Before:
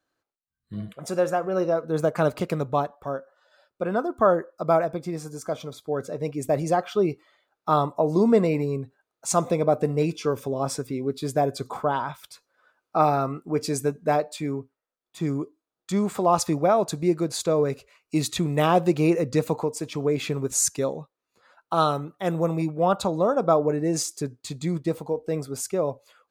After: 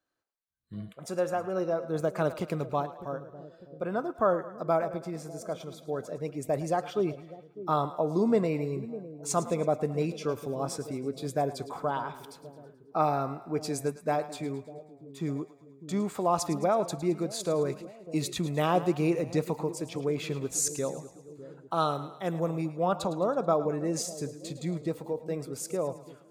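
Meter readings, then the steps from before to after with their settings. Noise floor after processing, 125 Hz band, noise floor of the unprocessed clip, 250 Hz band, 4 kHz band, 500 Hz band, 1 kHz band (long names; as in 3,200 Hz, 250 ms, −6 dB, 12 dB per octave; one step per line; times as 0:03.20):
−56 dBFS, −6.0 dB, below −85 dBFS, −6.0 dB, −6.0 dB, −6.0 dB, −6.0 dB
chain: echo with a time of its own for lows and highs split 580 Hz, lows 602 ms, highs 108 ms, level −14 dB
level −6 dB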